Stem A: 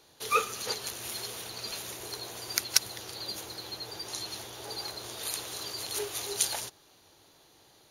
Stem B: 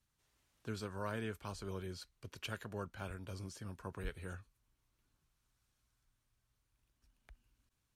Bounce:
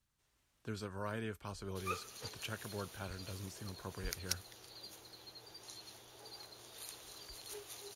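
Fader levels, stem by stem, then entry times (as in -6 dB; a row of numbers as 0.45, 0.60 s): -14.5, -0.5 dB; 1.55, 0.00 s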